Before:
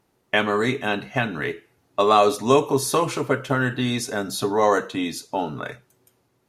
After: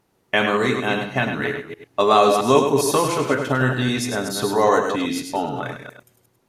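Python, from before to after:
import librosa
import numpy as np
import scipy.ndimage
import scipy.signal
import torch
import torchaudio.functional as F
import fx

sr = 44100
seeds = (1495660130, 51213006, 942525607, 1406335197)

y = fx.reverse_delay(x, sr, ms=134, wet_db=-7.0)
y = y + 10.0 ** (-7.5 / 20.0) * np.pad(y, (int(101 * sr / 1000.0), 0))[:len(y)]
y = F.gain(torch.from_numpy(y), 1.0).numpy()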